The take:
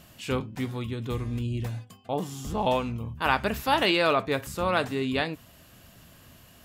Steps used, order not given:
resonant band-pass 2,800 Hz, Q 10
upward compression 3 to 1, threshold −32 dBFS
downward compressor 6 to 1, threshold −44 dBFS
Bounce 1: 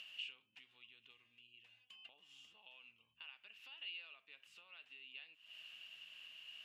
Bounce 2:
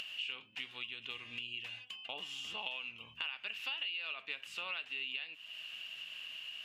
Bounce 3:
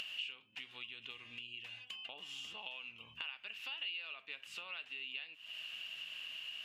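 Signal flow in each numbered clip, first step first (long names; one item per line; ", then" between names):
downward compressor, then upward compression, then resonant band-pass
resonant band-pass, then downward compressor, then upward compression
downward compressor, then resonant band-pass, then upward compression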